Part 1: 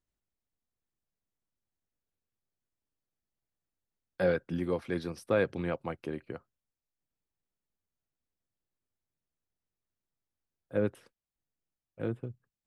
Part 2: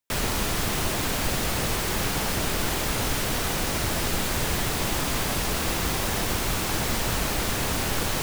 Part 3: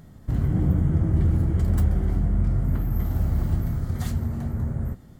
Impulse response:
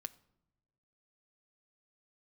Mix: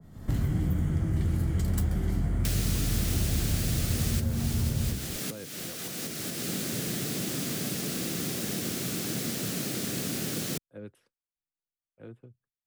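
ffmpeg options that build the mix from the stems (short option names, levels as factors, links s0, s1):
-filter_complex "[0:a]volume=0.266,asplit=2[s0][s1];[1:a]highpass=f=140:w=0.5412,highpass=f=140:w=1.3066,equalizer=f=940:t=o:w=0.56:g=-12,adelay=2350,volume=1.19[s2];[2:a]bandreject=f=66.1:t=h:w=4,bandreject=f=132.2:t=h:w=4,bandreject=f=198.3:t=h:w=4,bandreject=f=264.4:t=h:w=4,bandreject=f=330.5:t=h:w=4,bandreject=f=396.6:t=h:w=4,bandreject=f=462.7:t=h:w=4,bandreject=f=528.8:t=h:w=4,bandreject=f=594.9:t=h:w=4,bandreject=f=661:t=h:w=4,bandreject=f=727.1:t=h:w=4,bandreject=f=793.2:t=h:w=4,bandreject=f=859.3:t=h:w=4,bandreject=f=925.4:t=h:w=4,bandreject=f=991.5:t=h:w=4,bandreject=f=1057.6:t=h:w=4,bandreject=f=1123.7:t=h:w=4,bandreject=f=1189.8:t=h:w=4,bandreject=f=1255.9:t=h:w=4,bandreject=f=1322:t=h:w=4,bandreject=f=1388.1:t=h:w=4,bandreject=f=1454.2:t=h:w=4,bandreject=f=1520.3:t=h:w=4,bandreject=f=1586.4:t=h:w=4,bandreject=f=1652.5:t=h:w=4,bandreject=f=1718.6:t=h:w=4,bandreject=f=1784.7:t=h:w=4,bandreject=f=1850.8:t=h:w=4,dynaudnorm=f=110:g=3:m=3.76,volume=0.562[s3];[s1]apad=whole_len=466386[s4];[s2][s4]sidechaincompress=threshold=0.00316:ratio=10:attack=9.1:release=359[s5];[s0][s5][s3]amix=inputs=3:normalize=0,acrossover=split=110|370|1800|3700[s6][s7][s8][s9][s10];[s6]acompressor=threshold=0.0316:ratio=4[s11];[s7]acompressor=threshold=0.0282:ratio=4[s12];[s8]acompressor=threshold=0.00447:ratio=4[s13];[s9]acompressor=threshold=0.002:ratio=4[s14];[s10]acompressor=threshold=0.0126:ratio=4[s15];[s11][s12][s13][s14][s15]amix=inputs=5:normalize=0,adynamicequalizer=threshold=0.002:dfrequency=1700:dqfactor=0.7:tfrequency=1700:tqfactor=0.7:attack=5:release=100:ratio=0.375:range=1.5:mode=boostabove:tftype=highshelf"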